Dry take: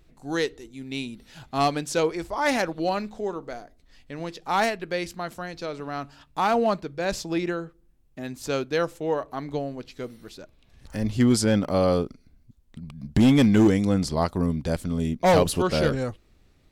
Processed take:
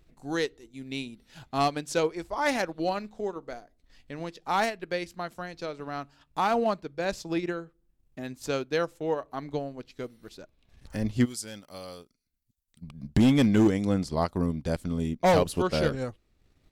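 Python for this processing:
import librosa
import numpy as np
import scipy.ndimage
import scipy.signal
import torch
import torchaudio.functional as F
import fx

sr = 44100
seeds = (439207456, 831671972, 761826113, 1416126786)

y = fx.transient(x, sr, attack_db=2, sustain_db=-6)
y = fx.pre_emphasis(y, sr, coefficient=0.9, at=(11.24, 12.81), fade=0.02)
y = y * librosa.db_to_amplitude(-3.5)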